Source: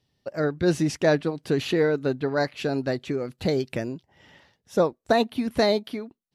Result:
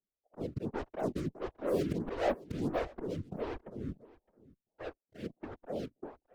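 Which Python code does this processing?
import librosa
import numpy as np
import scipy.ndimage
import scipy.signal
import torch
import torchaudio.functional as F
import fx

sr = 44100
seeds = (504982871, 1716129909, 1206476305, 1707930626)

p1 = fx.doppler_pass(x, sr, speed_mps=26, closest_m=13.0, pass_at_s=2.19)
p2 = scipy.signal.sosfilt(scipy.signal.ellip(4, 1.0, 80, 730.0, 'lowpass', fs=sr, output='sos'), p1)
p3 = p2 + 0.3 * np.pad(p2, (int(6.8 * sr / 1000.0), 0))[:len(p2)]
p4 = fx.auto_swell(p3, sr, attack_ms=214.0)
p5 = fx.fuzz(p4, sr, gain_db=43.0, gate_db=-53.0)
p6 = p4 + (p5 * librosa.db_to_amplitude(-10.0))
p7 = fx.whisperise(p6, sr, seeds[0])
p8 = p7 + fx.echo_single(p7, sr, ms=613, db=-22.0, dry=0)
p9 = fx.stagger_phaser(p8, sr, hz=1.5)
y = p9 * librosa.db_to_amplitude(-8.0)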